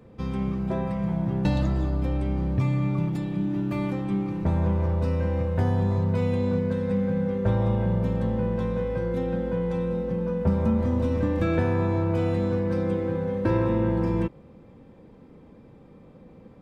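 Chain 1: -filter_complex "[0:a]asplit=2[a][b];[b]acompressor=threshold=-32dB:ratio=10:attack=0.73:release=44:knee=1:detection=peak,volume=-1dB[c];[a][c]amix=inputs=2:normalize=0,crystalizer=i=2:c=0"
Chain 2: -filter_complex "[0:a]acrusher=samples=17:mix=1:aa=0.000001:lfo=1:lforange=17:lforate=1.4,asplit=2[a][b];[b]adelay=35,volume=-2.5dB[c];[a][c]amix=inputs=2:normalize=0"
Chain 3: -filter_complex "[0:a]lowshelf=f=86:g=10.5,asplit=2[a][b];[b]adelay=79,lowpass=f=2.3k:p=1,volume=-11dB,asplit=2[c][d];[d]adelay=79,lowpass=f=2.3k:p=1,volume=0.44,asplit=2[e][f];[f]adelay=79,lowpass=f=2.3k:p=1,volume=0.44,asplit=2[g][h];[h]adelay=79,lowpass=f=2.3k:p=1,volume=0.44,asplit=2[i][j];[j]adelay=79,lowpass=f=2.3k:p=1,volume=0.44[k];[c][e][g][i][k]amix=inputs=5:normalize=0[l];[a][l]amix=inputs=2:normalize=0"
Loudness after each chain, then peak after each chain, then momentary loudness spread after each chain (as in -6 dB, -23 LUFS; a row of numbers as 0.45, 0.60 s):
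-24.0, -23.5, -23.0 LUFS; -11.0, -9.5, -7.0 dBFS; 3, 5, 5 LU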